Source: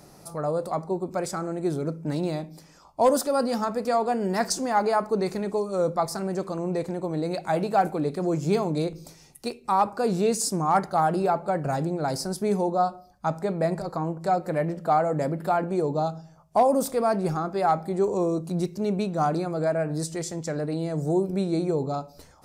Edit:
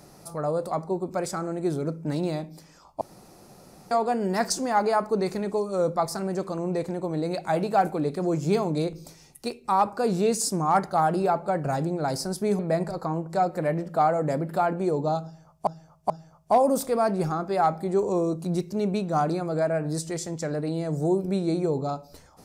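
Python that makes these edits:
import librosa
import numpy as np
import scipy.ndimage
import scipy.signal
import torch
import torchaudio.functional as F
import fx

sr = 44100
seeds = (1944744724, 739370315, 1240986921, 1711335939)

y = fx.edit(x, sr, fx.room_tone_fill(start_s=3.01, length_s=0.9),
    fx.cut(start_s=12.59, length_s=0.91),
    fx.repeat(start_s=16.15, length_s=0.43, count=3), tone=tone)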